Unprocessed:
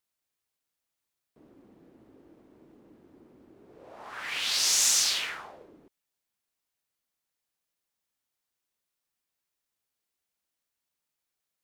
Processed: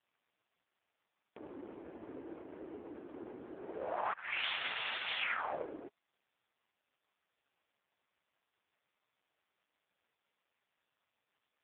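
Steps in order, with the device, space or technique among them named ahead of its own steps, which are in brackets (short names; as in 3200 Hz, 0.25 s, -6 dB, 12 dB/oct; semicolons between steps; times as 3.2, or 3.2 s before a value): 4.13–4.68 expander -26 dBFS; voicemail (BPF 390–2600 Hz; compressor 8:1, threshold -43 dBFS, peak gain reduction 11 dB; gain +15 dB; AMR-NB 4.75 kbps 8000 Hz)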